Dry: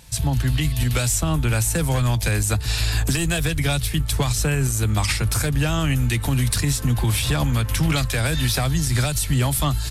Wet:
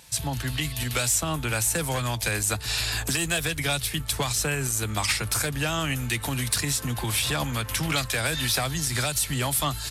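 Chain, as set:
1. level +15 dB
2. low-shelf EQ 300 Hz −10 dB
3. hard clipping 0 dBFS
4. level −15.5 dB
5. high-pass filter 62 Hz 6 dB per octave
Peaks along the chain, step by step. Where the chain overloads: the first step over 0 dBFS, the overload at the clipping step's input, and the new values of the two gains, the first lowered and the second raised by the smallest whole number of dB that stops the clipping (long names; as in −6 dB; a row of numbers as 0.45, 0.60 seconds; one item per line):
+4.5, +4.0, 0.0, −15.5, −14.5 dBFS
step 1, 4.0 dB
step 1 +11 dB, step 4 −11.5 dB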